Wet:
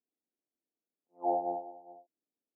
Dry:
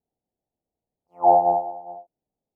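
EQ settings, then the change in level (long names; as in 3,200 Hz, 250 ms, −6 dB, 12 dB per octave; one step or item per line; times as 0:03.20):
four-pole ladder band-pass 340 Hz, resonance 45%
+1.0 dB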